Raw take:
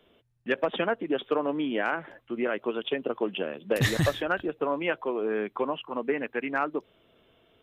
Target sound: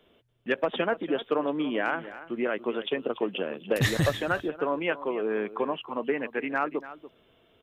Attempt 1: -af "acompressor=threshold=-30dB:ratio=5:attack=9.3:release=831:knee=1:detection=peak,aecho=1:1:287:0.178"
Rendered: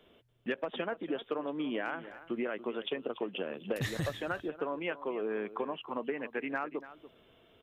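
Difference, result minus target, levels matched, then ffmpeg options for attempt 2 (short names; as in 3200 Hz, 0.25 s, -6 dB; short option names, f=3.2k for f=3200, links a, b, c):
compressor: peak gain reduction +11 dB
-af "aecho=1:1:287:0.178"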